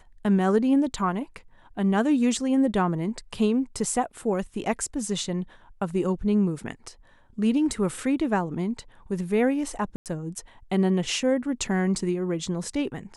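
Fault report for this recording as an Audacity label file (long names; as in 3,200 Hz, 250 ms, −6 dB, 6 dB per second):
9.960000	10.060000	drop-out 98 ms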